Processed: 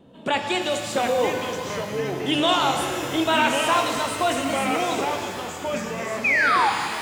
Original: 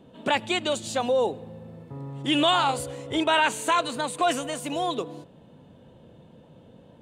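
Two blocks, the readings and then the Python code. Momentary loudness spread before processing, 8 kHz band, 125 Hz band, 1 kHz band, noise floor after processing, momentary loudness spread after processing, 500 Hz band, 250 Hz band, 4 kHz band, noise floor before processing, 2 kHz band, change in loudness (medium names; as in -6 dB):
17 LU, +4.0 dB, +3.0 dB, +4.0 dB, -34 dBFS, 10 LU, +3.5 dB, +3.5 dB, +2.5 dB, -53 dBFS, +7.0 dB, +2.5 dB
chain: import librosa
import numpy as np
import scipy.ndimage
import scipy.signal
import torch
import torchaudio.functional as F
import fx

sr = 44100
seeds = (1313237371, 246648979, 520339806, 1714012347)

y = fx.echo_pitch(x, sr, ms=635, semitones=-3, count=3, db_per_echo=-6.0)
y = fx.wow_flutter(y, sr, seeds[0], rate_hz=2.1, depth_cents=22.0)
y = fx.spec_paint(y, sr, seeds[1], shape='fall', start_s=6.24, length_s=0.46, low_hz=770.0, high_hz=2600.0, level_db=-20.0)
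y = fx.rev_shimmer(y, sr, seeds[2], rt60_s=2.4, semitones=12, shimmer_db=-8, drr_db=4.0)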